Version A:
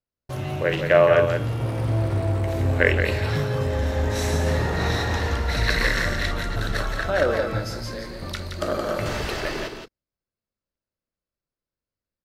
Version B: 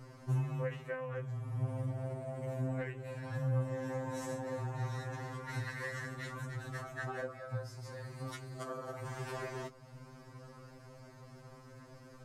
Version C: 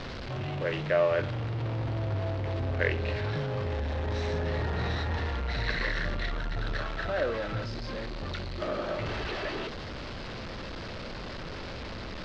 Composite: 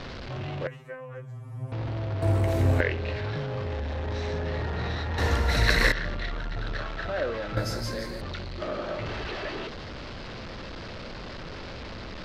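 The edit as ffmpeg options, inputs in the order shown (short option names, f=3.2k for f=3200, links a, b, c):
-filter_complex "[0:a]asplit=3[a][b][c];[2:a]asplit=5[d][e][f][g][h];[d]atrim=end=0.672[i];[1:a]atrim=start=0.668:end=1.722[j];[e]atrim=start=1.718:end=2.222[k];[a]atrim=start=2.218:end=2.812[l];[f]atrim=start=2.808:end=5.182[m];[b]atrim=start=5.178:end=5.922[n];[g]atrim=start=5.918:end=7.572[o];[c]atrim=start=7.568:end=8.212[p];[h]atrim=start=8.208[q];[i][j]acrossfade=d=0.004:c1=hsin:c2=hsin[r];[r][k]acrossfade=d=0.004:c1=hsin:c2=hsin[s];[s][l]acrossfade=d=0.004:c1=hsin:c2=hsin[t];[t][m]acrossfade=d=0.004:c1=hsin:c2=hsin[u];[u][n]acrossfade=d=0.004:c1=hsin:c2=hsin[v];[v][o]acrossfade=d=0.004:c1=hsin:c2=hsin[w];[w][p]acrossfade=d=0.004:c1=hsin:c2=hsin[x];[x][q]acrossfade=d=0.004:c1=hsin:c2=hsin"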